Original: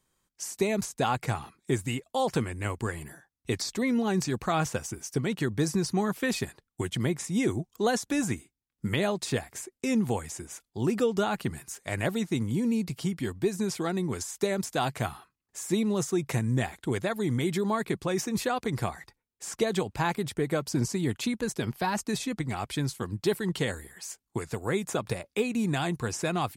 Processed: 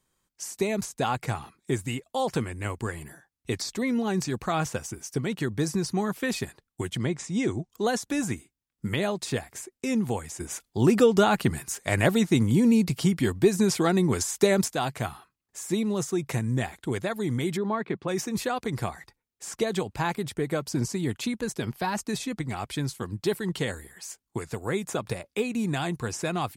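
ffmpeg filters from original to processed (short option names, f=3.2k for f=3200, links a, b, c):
-filter_complex "[0:a]asettb=1/sr,asplit=3[a][b][c];[a]atrim=end=6.984[d];[b]atrim=start=6.98:end=7.7,asetpts=PTS-STARTPTS,afade=t=in:d=0.004:c=qsin,afade=t=out:st=0.716:d=0.004:c=qsin,lowpass=f=8k:w=0.5412,lowpass=f=8k:w=1.3066[e];[c]atrim=start=7.696[f];[d][e]acrossfade=d=0.004:c1=hsin:c2=qsin[g];[g][f]acrossfade=d=0.004:c1=qsin:c2=hsin,asettb=1/sr,asplit=3[h][i][j];[h]atrim=end=10.404[k];[i]atrim=start=10.4:end=14.68,asetpts=PTS-STARTPTS,afade=t=in:d=0.004:c=qsin,afade=t=out:st=4.276:d=0.004:c=qsin,acontrast=82[l];[j]atrim=start=14.676[m];[k][l]acrossfade=d=0.004:c1=hsin:c2=qsin[n];[n][m]acrossfade=d=0.004:c1=qsin:c2=hsin,asplit=3[o][p][q];[o]afade=t=out:st=17.56:d=0.02[r];[p]highpass=130,lowpass=2.6k,afade=t=in:st=17.56:d=0.02,afade=t=out:st=18.07:d=0.02[s];[q]afade=t=in:st=18.07:d=0.02[t];[r][s][t]amix=inputs=3:normalize=0"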